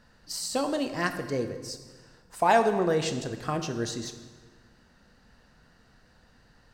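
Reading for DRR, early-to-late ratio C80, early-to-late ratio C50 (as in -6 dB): 7.5 dB, 11.0 dB, 9.5 dB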